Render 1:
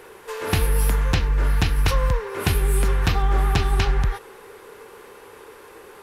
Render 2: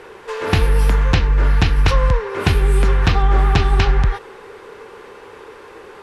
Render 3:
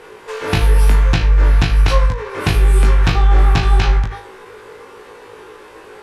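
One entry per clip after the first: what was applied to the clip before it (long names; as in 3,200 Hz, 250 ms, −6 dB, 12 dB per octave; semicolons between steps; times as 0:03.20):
Bessel low-pass filter 4,900 Hz, order 2; level +5.5 dB
high-shelf EQ 6,900 Hz +5.5 dB; flutter between parallel walls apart 3.2 metres, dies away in 0.27 s; every ending faded ahead of time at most 110 dB per second; level −1.5 dB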